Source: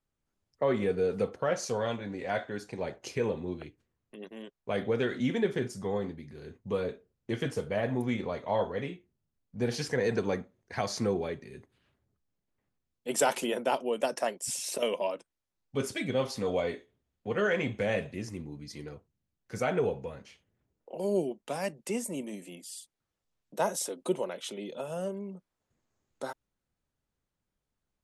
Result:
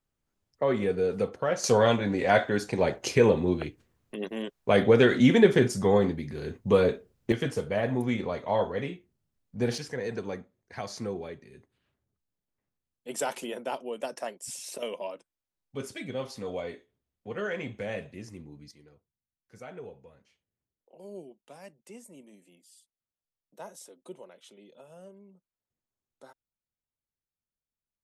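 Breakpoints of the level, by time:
+1.5 dB
from 0:01.64 +10 dB
from 0:07.32 +2.5 dB
from 0:09.78 −5 dB
from 0:18.71 −14.5 dB

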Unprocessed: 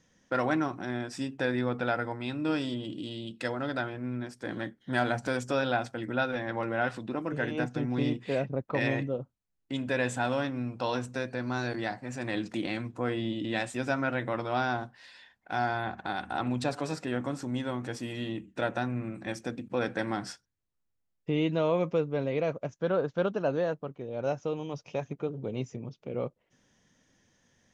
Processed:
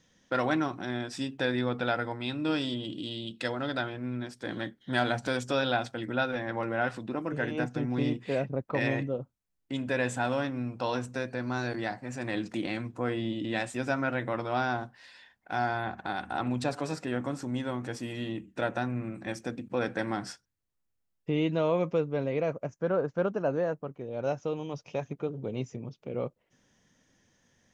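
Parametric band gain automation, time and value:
parametric band 3,600 Hz 0.68 octaves
0:05.94 +6 dB
0:06.45 −1.5 dB
0:22.14 −1.5 dB
0:22.80 −12 dB
0:23.69 −12 dB
0:24.18 −0.5 dB

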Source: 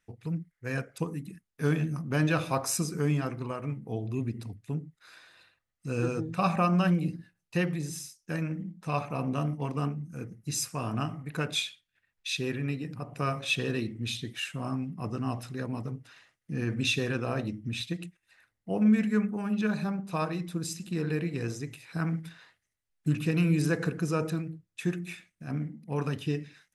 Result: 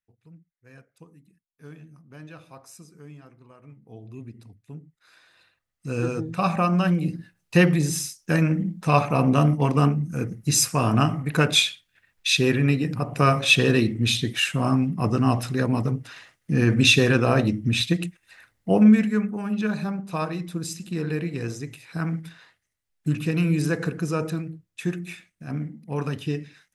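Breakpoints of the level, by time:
0:03.44 −17 dB
0:04.07 −8 dB
0:04.63 −8 dB
0:05.89 +3.5 dB
0:06.94 +3.5 dB
0:07.62 +11.5 dB
0:18.72 +11.5 dB
0:19.14 +3 dB

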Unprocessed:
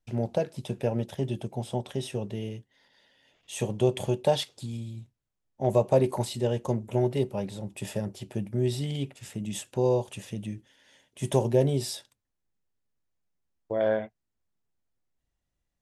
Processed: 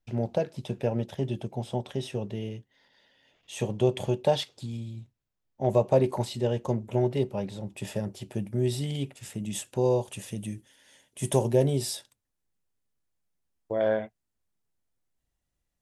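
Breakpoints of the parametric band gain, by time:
parametric band 10,000 Hz 0.91 octaves
0:07.56 −6.5 dB
0:08.50 +3.5 dB
0:10.08 +3.5 dB
0:10.54 +15 dB
0:11.66 +4 dB

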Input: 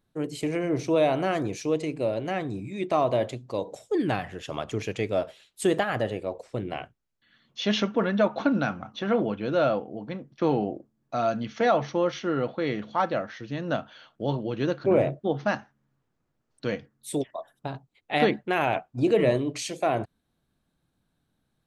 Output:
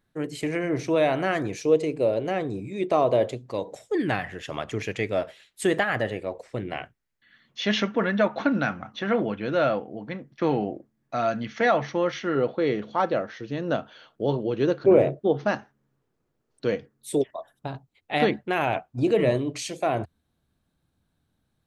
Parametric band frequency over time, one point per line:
parametric band +7.5 dB 0.63 octaves
1,800 Hz
from 0:01.59 460 Hz
from 0:03.46 1,900 Hz
from 0:12.35 420 Hz
from 0:17.30 80 Hz

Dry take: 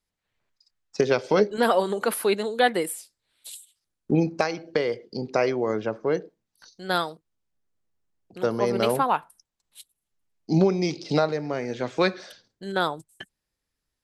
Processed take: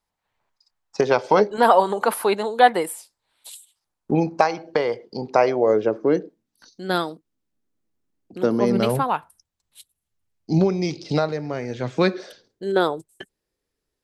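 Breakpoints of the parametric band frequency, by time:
parametric band +11.5 dB 1 octave
0:05.38 890 Hz
0:06.13 270 Hz
0:08.60 270 Hz
0:09.14 85 Hz
0:11.77 85 Hz
0:12.19 410 Hz

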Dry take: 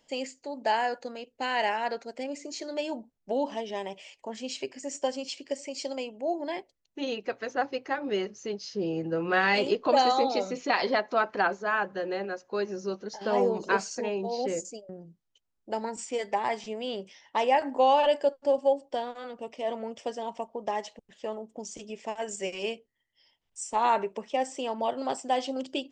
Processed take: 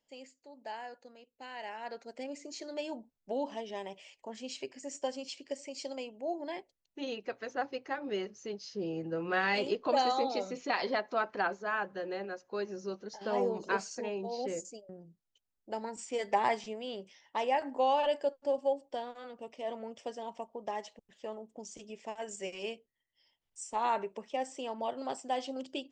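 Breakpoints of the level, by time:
0:01.62 −16 dB
0:02.13 −6 dB
0:16.02 −6 dB
0:16.43 +1 dB
0:16.81 −6.5 dB

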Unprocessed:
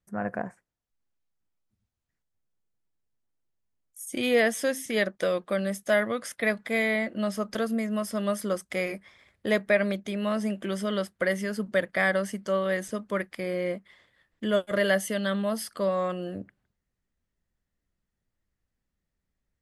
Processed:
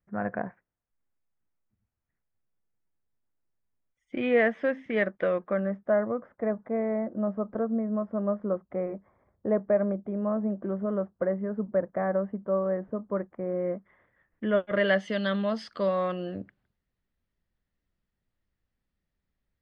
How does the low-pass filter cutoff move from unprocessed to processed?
low-pass filter 24 dB per octave
0:05.27 2,300 Hz
0:06.07 1,100 Hz
0:13.35 1,100 Hz
0:14.70 2,700 Hz
0:15.16 4,700 Hz

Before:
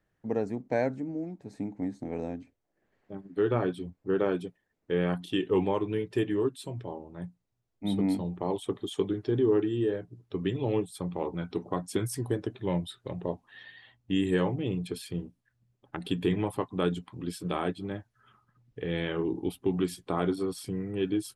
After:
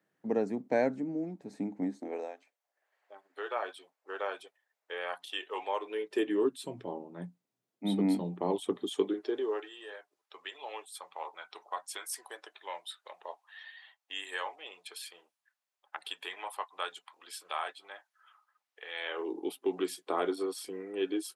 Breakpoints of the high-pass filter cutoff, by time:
high-pass filter 24 dB per octave
0:01.83 170 Hz
0:02.39 640 Hz
0:05.66 640 Hz
0:06.65 180 Hz
0:08.81 180 Hz
0:09.75 750 Hz
0:18.95 750 Hz
0:19.37 340 Hz

